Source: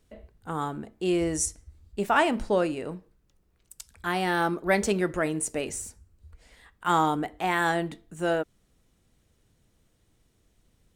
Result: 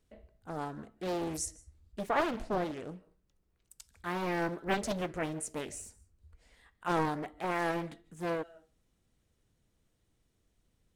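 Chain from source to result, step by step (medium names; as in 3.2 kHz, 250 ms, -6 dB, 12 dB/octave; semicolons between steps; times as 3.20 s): on a send at -21.5 dB: reverberation RT60 0.35 s, pre-delay 110 ms; on the sum: loudspeaker Doppler distortion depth 0.93 ms; trim -8 dB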